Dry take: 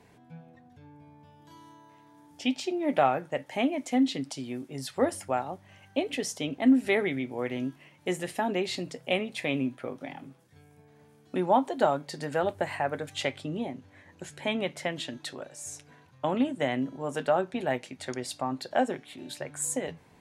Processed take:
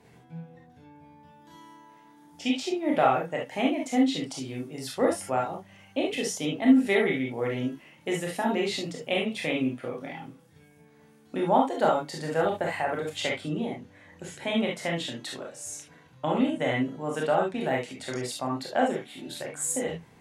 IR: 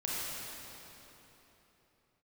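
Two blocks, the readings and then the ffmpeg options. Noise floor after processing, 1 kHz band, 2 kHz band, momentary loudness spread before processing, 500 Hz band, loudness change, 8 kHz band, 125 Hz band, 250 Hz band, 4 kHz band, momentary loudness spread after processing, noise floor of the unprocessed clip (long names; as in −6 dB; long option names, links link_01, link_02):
−56 dBFS, +2.0 dB, +2.5 dB, 14 LU, +2.0 dB, +2.0 dB, +2.5 dB, +3.0 dB, +2.0 dB, +2.5 dB, 14 LU, −58 dBFS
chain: -filter_complex "[1:a]atrim=start_sample=2205,atrim=end_sample=4410,asetrate=57330,aresample=44100[link_01];[0:a][link_01]afir=irnorm=-1:irlink=0,volume=3.5dB"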